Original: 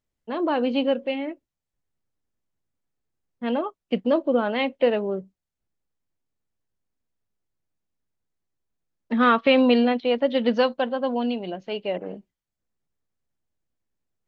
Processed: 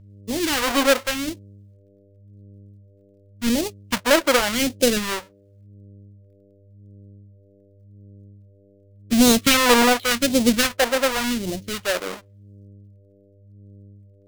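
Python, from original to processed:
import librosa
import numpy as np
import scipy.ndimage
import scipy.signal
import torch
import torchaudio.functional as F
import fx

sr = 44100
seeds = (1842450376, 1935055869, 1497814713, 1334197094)

y = fx.halfwave_hold(x, sr)
y = fx.dmg_buzz(y, sr, base_hz=100.0, harmonics=6, level_db=-48.0, tilt_db=-6, odd_only=False)
y = fx.phaser_stages(y, sr, stages=2, low_hz=120.0, high_hz=1300.0, hz=0.89, feedback_pct=30)
y = y * 10.0 ** (2.5 / 20.0)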